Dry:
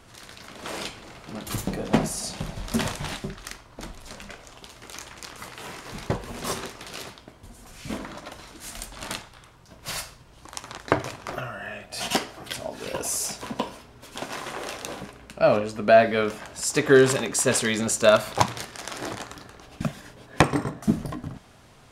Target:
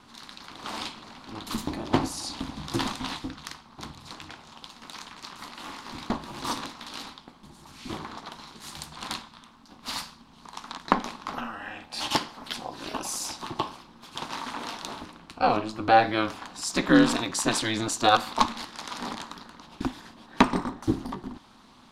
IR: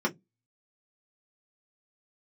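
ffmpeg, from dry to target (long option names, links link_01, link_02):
-af "aeval=exprs='val(0)*sin(2*PI*110*n/s)':channel_layout=same,equalizer=frequency=250:width_type=o:width=1:gain=11,equalizer=frequency=500:width_type=o:width=1:gain=-5,equalizer=frequency=1000:width_type=o:width=1:gain=12,equalizer=frequency=4000:width_type=o:width=1:gain=11,volume=-5.5dB"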